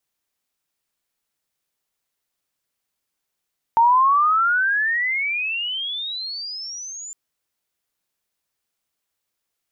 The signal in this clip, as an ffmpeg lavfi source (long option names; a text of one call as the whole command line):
ffmpeg -f lavfi -i "aevalsrc='pow(10,(-11-21*t/3.36)/20)*sin(2*PI*904*3.36/(36*log(2)/12)*(exp(36*log(2)/12*t/3.36)-1))':duration=3.36:sample_rate=44100" out.wav